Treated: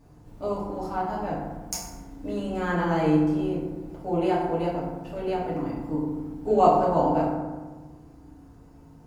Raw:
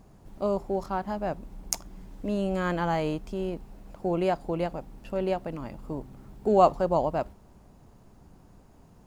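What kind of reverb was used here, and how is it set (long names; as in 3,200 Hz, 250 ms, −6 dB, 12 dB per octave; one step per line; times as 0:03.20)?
feedback delay network reverb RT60 1.3 s, low-frequency decay 1.45×, high-frequency decay 0.45×, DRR −7.5 dB
level −6.5 dB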